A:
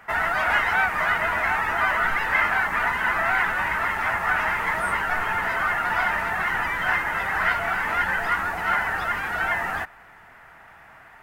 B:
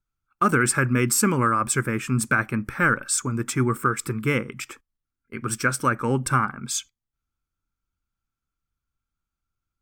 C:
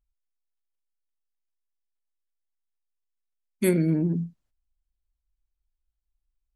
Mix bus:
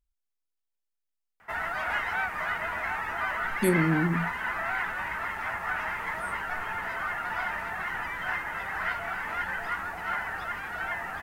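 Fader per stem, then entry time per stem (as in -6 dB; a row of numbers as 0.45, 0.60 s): -8.5 dB, off, -2.0 dB; 1.40 s, off, 0.00 s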